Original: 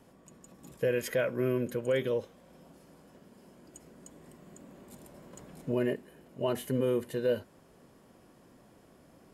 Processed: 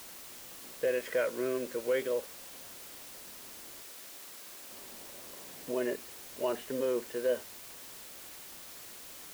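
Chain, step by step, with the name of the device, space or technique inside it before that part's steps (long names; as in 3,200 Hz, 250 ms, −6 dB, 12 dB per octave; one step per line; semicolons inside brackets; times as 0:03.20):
wax cylinder (band-pass filter 360–2,800 Hz; tape wow and flutter; white noise bed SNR 11 dB)
0:03.82–0:04.70: low-shelf EQ 360 Hz −10.5 dB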